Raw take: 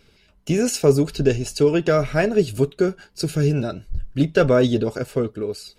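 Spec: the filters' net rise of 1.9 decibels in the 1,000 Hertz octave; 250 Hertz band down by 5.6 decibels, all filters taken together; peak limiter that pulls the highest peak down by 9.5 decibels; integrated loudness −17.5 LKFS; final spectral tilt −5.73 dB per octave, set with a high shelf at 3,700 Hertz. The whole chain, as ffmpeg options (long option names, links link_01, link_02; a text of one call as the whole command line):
ffmpeg -i in.wav -af "equalizer=frequency=250:width_type=o:gain=-8.5,equalizer=frequency=1000:width_type=o:gain=4,highshelf=frequency=3700:gain=-4.5,volume=9dB,alimiter=limit=-5.5dB:level=0:latency=1" out.wav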